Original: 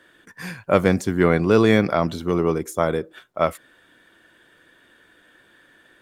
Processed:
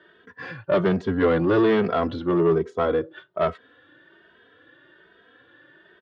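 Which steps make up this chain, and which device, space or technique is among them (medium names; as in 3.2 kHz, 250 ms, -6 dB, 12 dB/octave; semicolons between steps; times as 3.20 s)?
barber-pole flanger into a guitar amplifier (endless flanger 2.8 ms +1.2 Hz; saturation -19 dBFS, distortion -11 dB; cabinet simulation 82–3500 Hz, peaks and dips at 210 Hz -5 dB, 410 Hz +4 dB, 820 Hz -3 dB, 2.3 kHz -9 dB); trim +4.5 dB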